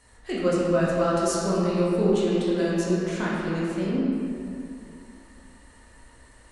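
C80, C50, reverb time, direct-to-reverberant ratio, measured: −1.0 dB, −2.5 dB, 2.6 s, −7.5 dB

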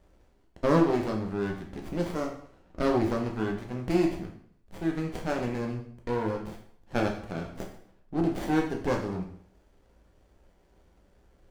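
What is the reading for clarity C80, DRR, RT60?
10.5 dB, 0.5 dB, 0.60 s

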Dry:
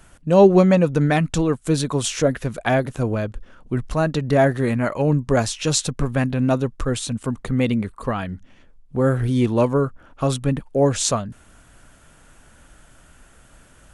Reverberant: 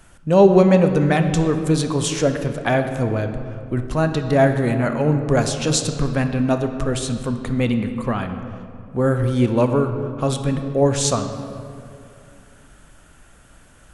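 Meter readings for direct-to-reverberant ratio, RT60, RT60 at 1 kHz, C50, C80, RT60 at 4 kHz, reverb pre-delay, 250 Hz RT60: 7.0 dB, 2.5 s, 2.4 s, 8.0 dB, 9.0 dB, 1.4 s, 23 ms, 3.0 s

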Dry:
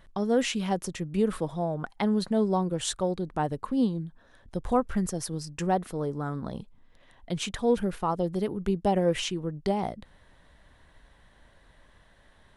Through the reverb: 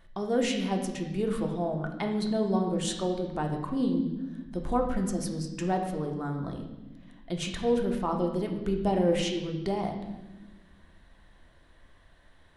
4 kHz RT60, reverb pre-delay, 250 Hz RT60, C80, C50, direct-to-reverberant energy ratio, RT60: 1.0 s, 3 ms, 2.1 s, 8.5 dB, 6.5 dB, 2.0 dB, 1.1 s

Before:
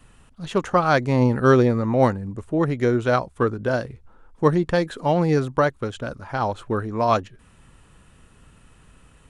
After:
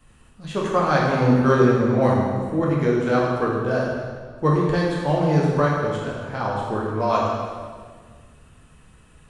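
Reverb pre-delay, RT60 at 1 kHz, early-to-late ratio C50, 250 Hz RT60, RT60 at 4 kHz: 5 ms, 1.6 s, 0.0 dB, 2.0 s, 1.5 s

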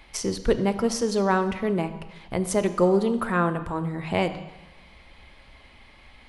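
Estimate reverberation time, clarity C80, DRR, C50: 1.1 s, 13.0 dB, 10.0 dB, 12.0 dB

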